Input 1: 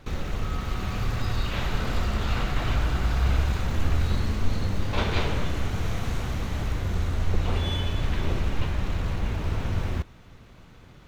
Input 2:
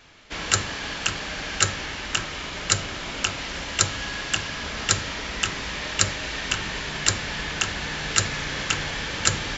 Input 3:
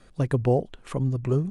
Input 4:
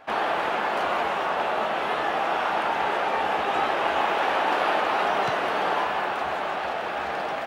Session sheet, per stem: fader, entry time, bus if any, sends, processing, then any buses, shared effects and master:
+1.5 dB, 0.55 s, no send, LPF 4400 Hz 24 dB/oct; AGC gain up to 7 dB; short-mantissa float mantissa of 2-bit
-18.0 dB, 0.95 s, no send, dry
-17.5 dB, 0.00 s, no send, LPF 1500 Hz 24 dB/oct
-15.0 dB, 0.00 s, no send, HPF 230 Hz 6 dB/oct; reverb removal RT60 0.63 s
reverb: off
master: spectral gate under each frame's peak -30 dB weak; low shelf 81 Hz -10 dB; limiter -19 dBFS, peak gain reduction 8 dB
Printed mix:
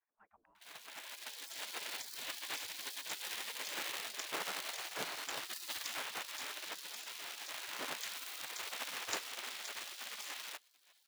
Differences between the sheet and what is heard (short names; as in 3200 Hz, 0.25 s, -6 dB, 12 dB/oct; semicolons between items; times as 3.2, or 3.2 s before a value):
stem 1 +1.5 dB -> -9.5 dB; stem 4: muted